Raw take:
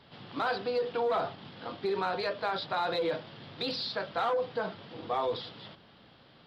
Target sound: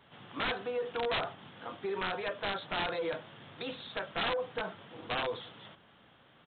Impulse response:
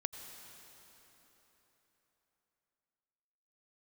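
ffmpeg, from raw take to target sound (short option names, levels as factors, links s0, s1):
-af "equalizer=f=1500:t=o:w=2.1:g=5,aresample=8000,aeval=exprs='(mod(10.6*val(0)+1,2)-1)/10.6':c=same,aresample=44100,volume=0.531"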